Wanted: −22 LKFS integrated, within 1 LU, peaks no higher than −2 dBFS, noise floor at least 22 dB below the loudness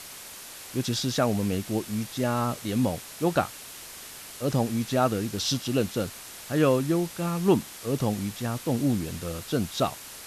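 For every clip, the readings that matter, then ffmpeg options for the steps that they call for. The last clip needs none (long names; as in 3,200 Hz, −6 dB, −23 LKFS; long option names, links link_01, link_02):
background noise floor −43 dBFS; target noise floor −50 dBFS; integrated loudness −27.5 LKFS; sample peak −8.5 dBFS; target loudness −22.0 LKFS
→ -af "afftdn=noise_reduction=7:noise_floor=-43"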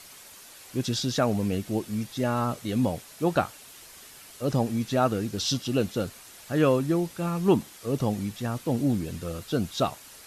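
background noise floor −48 dBFS; target noise floor −50 dBFS
→ -af "afftdn=noise_reduction=6:noise_floor=-48"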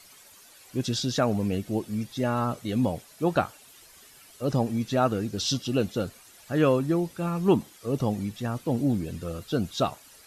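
background noise floor −53 dBFS; integrated loudness −27.5 LKFS; sample peak −8.5 dBFS; target loudness −22.0 LKFS
→ -af "volume=5.5dB"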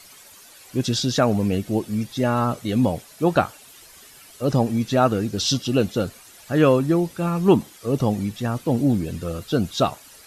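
integrated loudness −22.0 LKFS; sample peak −3.0 dBFS; background noise floor −47 dBFS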